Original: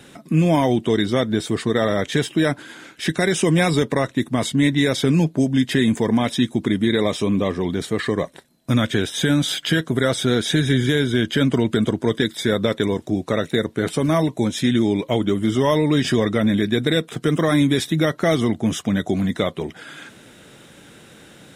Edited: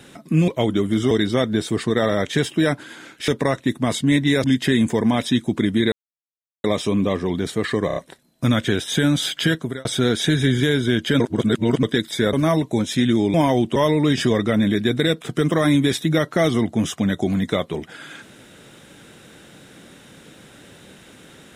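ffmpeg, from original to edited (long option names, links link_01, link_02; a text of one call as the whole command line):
ffmpeg -i in.wav -filter_complex "[0:a]asplit=15[link_01][link_02][link_03][link_04][link_05][link_06][link_07][link_08][link_09][link_10][link_11][link_12][link_13][link_14][link_15];[link_01]atrim=end=0.482[link_16];[link_02]atrim=start=14.998:end=15.632[link_17];[link_03]atrim=start=0.898:end=3.072[link_18];[link_04]atrim=start=3.788:end=4.952[link_19];[link_05]atrim=start=5.508:end=6.99,asetpts=PTS-STARTPTS,afade=type=out:start_time=1.478:duration=0.004:curve=hsin,apad=pad_dur=0.72[link_20];[link_06]atrim=start=6.99:end=8.252,asetpts=PTS-STARTPTS,afade=type=in:duration=0.004:curve=hsin[link_21];[link_07]atrim=start=8.218:end=8.252[link_22];[link_08]atrim=start=8.218:end=8.252[link_23];[link_09]atrim=start=8.218:end=10.11,asetpts=PTS-STARTPTS,afade=type=out:start_time=1.572:duration=0.32[link_24];[link_10]atrim=start=10.11:end=11.462,asetpts=PTS-STARTPTS,afade=type=in:duration=0.004:curve=hsin[link_25];[link_11]atrim=start=11.458:end=12.092,asetpts=PTS-STARTPTS,areverse[link_26];[link_12]atrim=start=12.088:end=12.592[link_27];[link_13]atrim=start=13.988:end=15.002[link_28];[link_14]atrim=start=0.478:end=0.902[link_29];[link_15]atrim=start=15.628[link_30];[link_16][link_17]acrossfade=duration=0.004:curve1=hsin:curve2=hsin[link_31];[link_31][link_18]acrossfade=duration=0.004:curve1=hsin:curve2=hsin[link_32];[link_32][link_19]acrossfade=duration=0.004:curve1=hsin:curve2=hsin[link_33];[link_20][link_21]concat=n=2:v=0:a=1[link_34];[link_33][link_34]acrossfade=duration=0.004:curve1=hsin:curve2=hsin[link_35];[link_35][link_22]acrossfade=duration=0.004:curve1=hsin:curve2=hsin[link_36];[link_36][link_23]acrossfade=duration=0.004:curve1=hsin:curve2=hsin[link_37];[link_24][link_25]concat=n=2:v=0:a=1[link_38];[link_37][link_38]acrossfade=duration=0.004:curve1=hsin:curve2=hsin[link_39];[link_39][link_26]acrossfade=duration=0.004:curve1=hsin:curve2=hsin[link_40];[link_40][link_27]acrossfade=duration=0.004:curve1=hsin:curve2=hsin[link_41];[link_41][link_28]acrossfade=duration=0.004:curve1=hsin:curve2=hsin[link_42];[link_42][link_29]acrossfade=duration=0.004:curve1=hsin:curve2=hsin[link_43];[link_43][link_30]acrossfade=duration=0.004:curve1=hsin:curve2=hsin" out.wav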